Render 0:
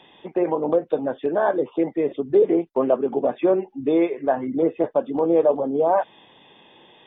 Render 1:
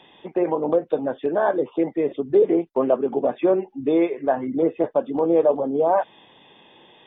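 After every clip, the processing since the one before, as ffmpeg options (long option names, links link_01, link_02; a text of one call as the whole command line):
ffmpeg -i in.wav -af anull out.wav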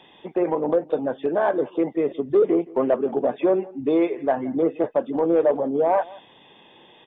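ffmpeg -i in.wav -af "asoftclip=type=tanh:threshold=-8.5dB,aecho=1:1:170:0.0841" out.wav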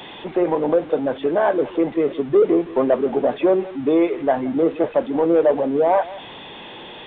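ffmpeg -i in.wav -af "aeval=exprs='val(0)+0.5*0.0168*sgn(val(0))':channel_layout=same,aresample=8000,aresample=44100,volume=2.5dB" out.wav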